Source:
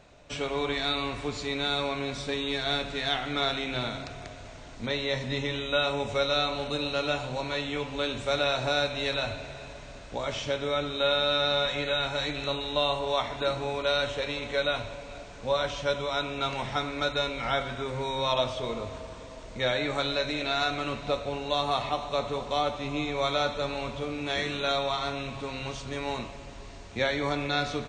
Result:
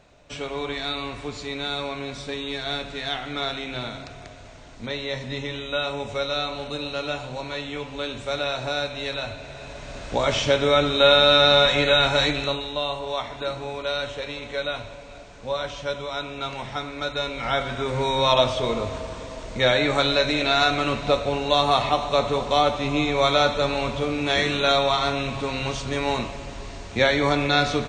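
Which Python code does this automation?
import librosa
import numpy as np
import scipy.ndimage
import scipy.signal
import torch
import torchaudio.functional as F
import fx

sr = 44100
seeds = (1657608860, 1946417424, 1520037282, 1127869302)

y = fx.gain(x, sr, db=fx.line((9.37, 0.0), (10.09, 10.0), (12.24, 10.0), (12.77, -0.5), (16.99, -0.5), (18.03, 8.0)))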